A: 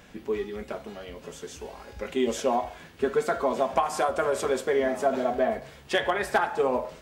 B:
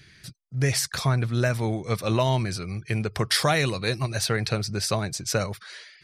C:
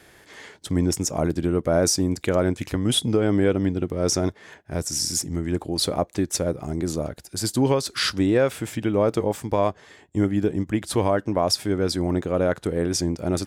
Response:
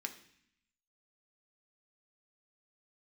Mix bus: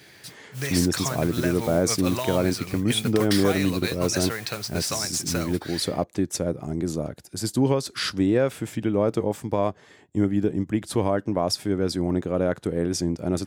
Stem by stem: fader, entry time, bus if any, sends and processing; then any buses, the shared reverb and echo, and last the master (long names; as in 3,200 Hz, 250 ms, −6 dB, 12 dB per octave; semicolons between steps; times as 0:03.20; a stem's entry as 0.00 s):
muted
+2.5 dB, 0.00 s, no send, low-shelf EQ 450 Hz −8.5 dB; downward compressor, threshold −28 dBFS, peak gain reduction 9.5 dB; noise that follows the level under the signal 11 dB
−4.0 dB, 0.00 s, no send, low-shelf EQ 320 Hz +6.5 dB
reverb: not used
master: high-pass filter 110 Hz